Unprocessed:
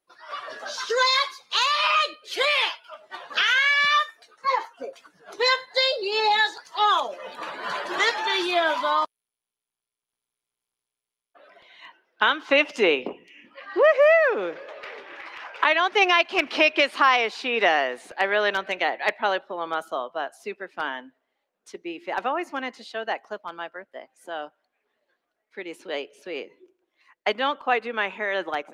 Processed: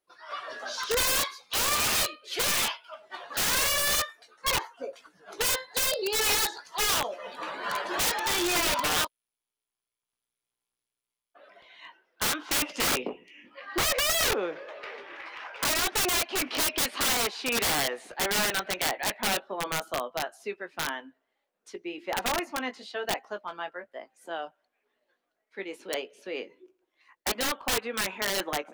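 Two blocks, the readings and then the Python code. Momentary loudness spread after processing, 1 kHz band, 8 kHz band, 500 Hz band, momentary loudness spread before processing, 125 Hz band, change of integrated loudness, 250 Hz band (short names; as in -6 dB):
16 LU, -8.0 dB, +14.5 dB, -8.5 dB, 18 LU, n/a, -4.5 dB, -3.0 dB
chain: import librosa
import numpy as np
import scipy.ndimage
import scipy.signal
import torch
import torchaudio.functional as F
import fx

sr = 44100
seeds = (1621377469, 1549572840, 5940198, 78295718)

y = fx.chorus_voices(x, sr, voices=4, hz=0.16, base_ms=18, depth_ms=2.3, mix_pct=25)
y = (np.mod(10.0 ** (20.5 / 20.0) * y + 1.0, 2.0) - 1.0) / 10.0 ** (20.5 / 20.0)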